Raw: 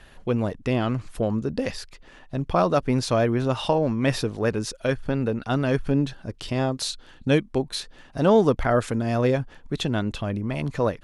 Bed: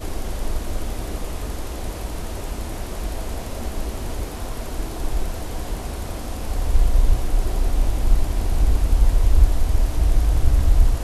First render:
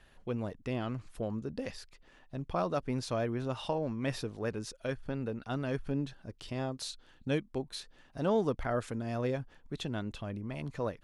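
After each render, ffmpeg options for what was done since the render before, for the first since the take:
-af "volume=0.266"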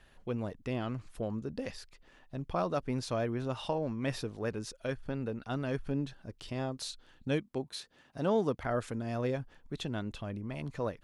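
-filter_complex "[0:a]asettb=1/sr,asplit=3[s0][s1][s2];[s0]atrim=end=7.404[s3];[s1]atrim=start=7.4:end=8.64,asetpts=PTS-STARTPTS,afade=t=in:d=0.004:c=qsin,afade=t=out:st=1.236:d=0.004:c=qsin,highpass=88[s4];[s2]atrim=start=8.636[s5];[s3][s4]acrossfade=d=0.004:c1=hsin:c2=qsin[s6];[s6][s5]acrossfade=d=0.004:c1=qsin:c2=hsin"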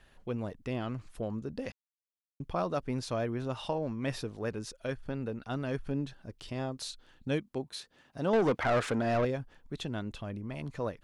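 -filter_complex "[0:a]asettb=1/sr,asplit=3[s0][s1][s2];[s0]atrim=end=8.334[s3];[s1]atrim=start=8.33:end=9.25,asetpts=PTS-STARTPTS,afade=t=in:d=0.004:c=qsin,afade=t=out:st=0.916:d=0.004:c=qsin,asplit=2[s4][s5];[s5]highpass=f=720:p=1,volume=15.8,asoftclip=type=tanh:threshold=0.112[s6];[s4][s6]amix=inputs=2:normalize=0,lowpass=f=2100:p=1,volume=0.501[s7];[s2]atrim=start=9.246[s8];[s3][s7]acrossfade=d=0.004:c1=hsin:c2=qsin[s9];[s9][s8]acrossfade=d=0.004:c1=qsin:c2=hsin,asplit=3[s10][s11][s12];[s10]atrim=end=1.72,asetpts=PTS-STARTPTS,afade=t=out:st=1.716:d=0.004:c=hsin[s13];[s11]atrim=start=1.72:end=2.4,asetpts=PTS-STARTPTS,volume=0[s14];[s12]atrim=start=2.4,asetpts=PTS-STARTPTS,afade=t=in:d=0.004:c=hsin[s15];[s13][s14][s15]concat=n=3:v=0:a=1"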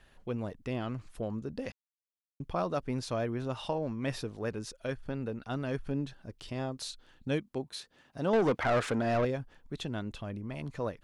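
-af anull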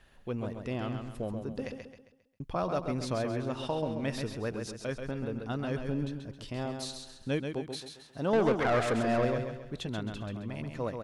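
-af "aecho=1:1:134|268|402|536|670:0.501|0.2|0.0802|0.0321|0.0128"

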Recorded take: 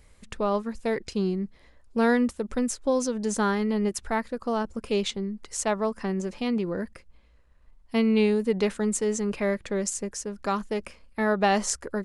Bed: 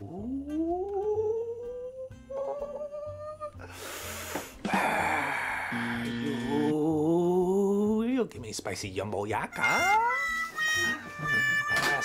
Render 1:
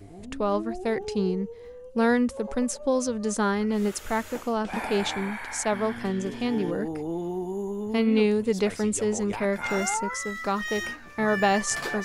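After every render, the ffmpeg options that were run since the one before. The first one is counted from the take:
-filter_complex "[1:a]volume=0.531[s0];[0:a][s0]amix=inputs=2:normalize=0"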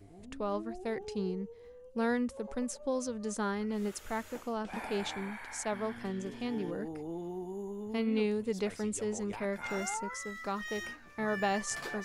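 -af "volume=0.355"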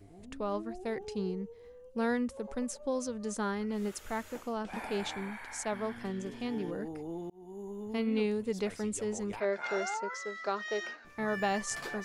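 -filter_complex "[0:a]asettb=1/sr,asplit=3[s0][s1][s2];[s0]atrim=end=9.404[s3];[s1]atrim=start=9.4:end=11.05,asetpts=PTS-STARTPTS,afade=t=in:d=0.004:c=qsin,afade=t=out:st=1.646:d=0.004:c=qsin,highpass=270,equalizer=f=270:t=q:w=4:g=-9,equalizer=f=400:t=q:w=4:g=6,equalizer=f=650:t=q:w=4:g=7,equalizer=f=1500:t=q:w=4:g=5,equalizer=f=4300:t=q:w=4:g=5,lowpass=f=6400:w=0.5412,lowpass=f=6400:w=1.3066[s4];[s2]atrim=start=11.046[s5];[s3][s4]acrossfade=d=0.004:c1=hsin:c2=qsin[s6];[s6][s5]acrossfade=d=0.004:c1=qsin:c2=hsin,asplit=2[s7][s8];[s7]atrim=end=7.3,asetpts=PTS-STARTPTS,afade=t=out:st=7.296:d=0.004:c=hsin[s9];[s8]atrim=start=7.3,asetpts=PTS-STARTPTS,afade=t=in:d=0.61:c=qsin[s10];[s9][s10]concat=n=2:v=0:a=1"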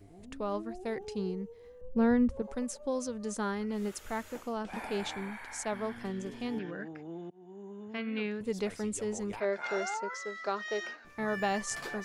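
-filter_complex "[0:a]asettb=1/sr,asplit=3[s0][s1][s2];[s0]atrim=end=1.814[s3];[s1]atrim=start=1.81:end=2.42,asetpts=PTS-STARTPTS,afade=t=in:d=0.004:c=qsin,afade=t=out:st=0.606:d=0.004:c=qsin,aemphasis=mode=reproduction:type=riaa[s4];[s2]atrim=start=2.416[s5];[s3][s4]acrossfade=d=0.004:c1=hsin:c2=qsin[s6];[s6][s5]acrossfade=d=0.004:c1=qsin:c2=hsin,asettb=1/sr,asplit=3[s7][s8][s9];[s7]atrim=end=6.594[s10];[s8]atrim=start=6.59:end=8.41,asetpts=PTS-STARTPTS,afade=t=in:d=0.004:c=qsin,afade=t=out:st=1.816:d=0.004:c=qsin,highpass=f=130:w=0.5412,highpass=f=130:w=1.3066,equalizer=f=250:t=q:w=4:g=-9,equalizer=f=450:t=q:w=4:g=-7,equalizer=f=870:t=q:w=4:g=-6,equalizer=f=1600:t=q:w=4:g=10,equalizer=f=2400:t=q:w=4:g=3,equalizer=f=4500:t=q:w=4:g=-7,lowpass=f=5400:w=0.5412,lowpass=f=5400:w=1.3066[s11];[s9]atrim=start=8.406[s12];[s10][s11]acrossfade=d=0.004:c1=hsin:c2=qsin[s13];[s13][s12]acrossfade=d=0.004:c1=qsin:c2=hsin"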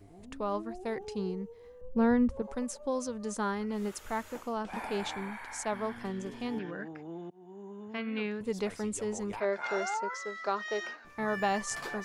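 -af "equalizer=f=1000:t=o:w=0.78:g=4"

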